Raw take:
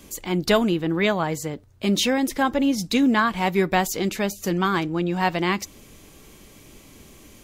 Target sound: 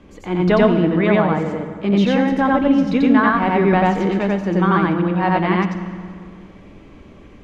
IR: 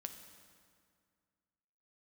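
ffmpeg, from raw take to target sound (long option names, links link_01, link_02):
-filter_complex "[0:a]lowpass=1900,asplit=2[link_01][link_02];[1:a]atrim=start_sample=2205,adelay=90[link_03];[link_02][link_03]afir=irnorm=-1:irlink=0,volume=4.5dB[link_04];[link_01][link_04]amix=inputs=2:normalize=0,volume=2.5dB"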